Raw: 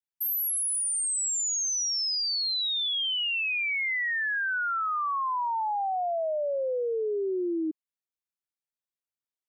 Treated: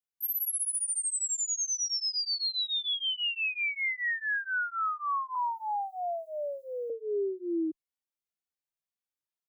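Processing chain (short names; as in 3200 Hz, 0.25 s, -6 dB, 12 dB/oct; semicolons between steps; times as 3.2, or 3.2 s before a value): 5.35–6.9 tilt +5.5 dB/oct; endless flanger 2.4 ms +1.8 Hz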